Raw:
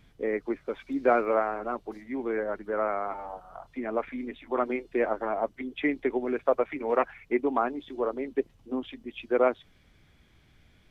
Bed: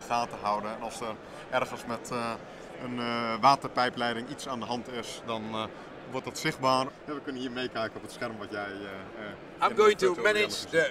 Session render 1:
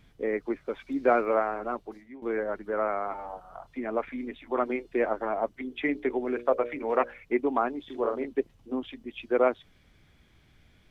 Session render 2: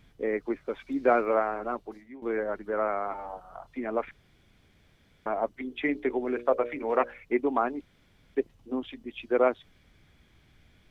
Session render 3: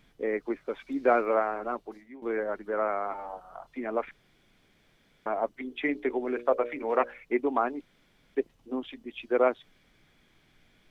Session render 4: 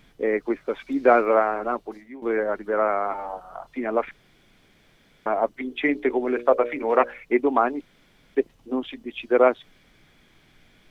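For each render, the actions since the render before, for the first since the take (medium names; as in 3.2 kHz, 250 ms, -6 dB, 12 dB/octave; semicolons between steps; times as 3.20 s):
1.74–2.22 s: fade out, to -18.5 dB; 5.58–7.23 s: hum notches 60/120/180/240/300/360/420/480/540/600 Hz; 7.85–8.25 s: doubling 43 ms -4.5 dB
4.11–5.26 s: room tone; 7.81–8.35 s: room tone
peaking EQ 68 Hz -13 dB 1.6 oct
trim +6.5 dB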